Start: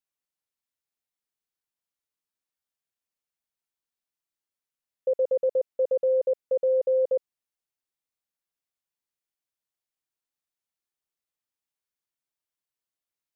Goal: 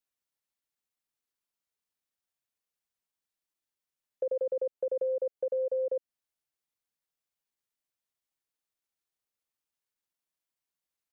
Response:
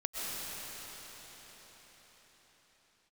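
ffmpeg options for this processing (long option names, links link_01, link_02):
-filter_complex "[0:a]acrossover=split=350|730[link_01][link_02][link_03];[link_01]acompressor=threshold=-46dB:ratio=4[link_04];[link_02]acompressor=threshold=-32dB:ratio=4[link_05];[link_03]acompressor=threshold=-49dB:ratio=4[link_06];[link_04][link_05][link_06]amix=inputs=3:normalize=0,atempo=1.2"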